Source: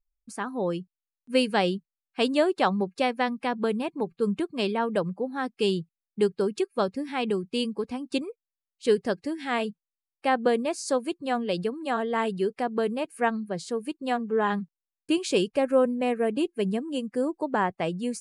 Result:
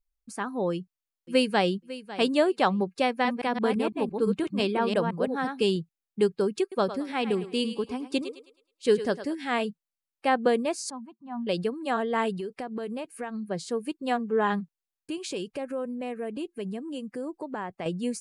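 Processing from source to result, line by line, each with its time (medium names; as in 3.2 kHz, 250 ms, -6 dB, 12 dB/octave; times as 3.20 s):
0.72–1.73 s: echo throw 550 ms, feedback 15%, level -15.5 dB
3.08–5.76 s: chunks repeated in reverse 169 ms, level -4.5 dB
6.61–9.35 s: thinning echo 106 ms, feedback 39%, high-pass 360 Hz, level -11 dB
10.90–11.47 s: two resonant band-passes 450 Hz, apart 2 oct
12.35–13.46 s: compression 10:1, threshold -30 dBFS
14.60–17.86 s: compression 2.5:1, threshold -34 dBFS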